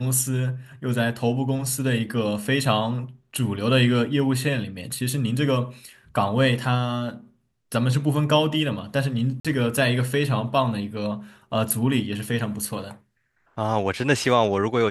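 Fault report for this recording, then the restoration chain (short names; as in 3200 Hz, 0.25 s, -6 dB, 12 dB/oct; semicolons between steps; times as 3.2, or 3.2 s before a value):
9.4–9.45 gap 46 ms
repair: interpolate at 9.4, 46 ms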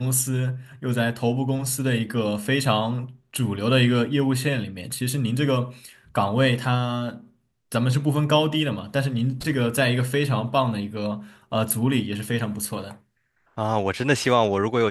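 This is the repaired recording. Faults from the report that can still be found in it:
none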